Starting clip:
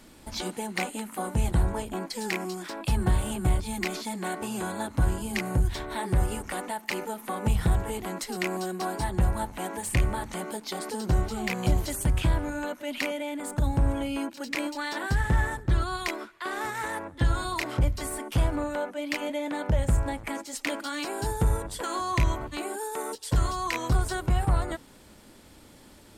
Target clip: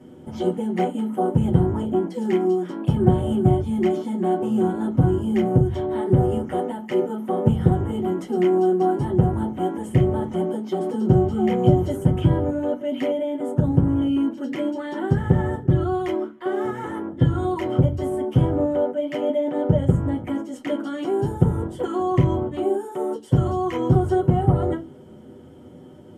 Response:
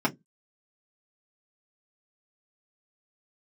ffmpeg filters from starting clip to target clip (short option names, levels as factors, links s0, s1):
-filter_complex "[0:a]equalizer=f=310:w=1.1:g=12.5[s0];[1:a]atrim=start_sample=2205,asetrate=25578,aresample=44100[s1];[s0][s1]afir=irnorm=-1:irlink=0,volume=0.168"